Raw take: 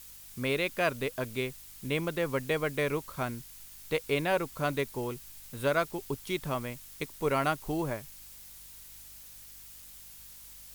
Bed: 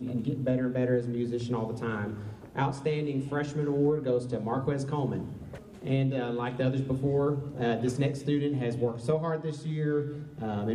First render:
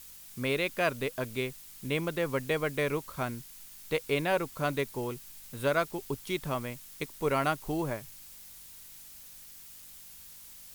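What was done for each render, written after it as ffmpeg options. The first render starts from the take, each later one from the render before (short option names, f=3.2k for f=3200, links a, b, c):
-af "bandreject=f=50:t=h:w=4,bandreject=f=100:t=h:w=4"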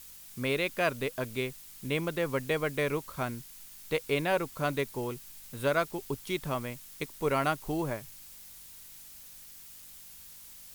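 -af anull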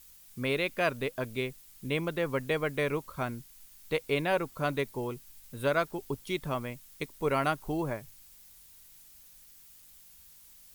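-af "afftdn=nr=7:nf=-50"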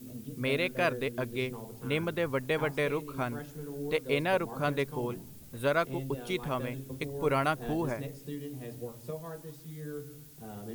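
-filter_complex "[1:a]volume=-12dB[a];[0:a][a]amix=inputs=2:normalize=0"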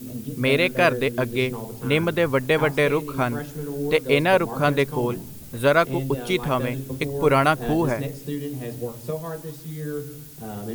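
-af "volume=10dB"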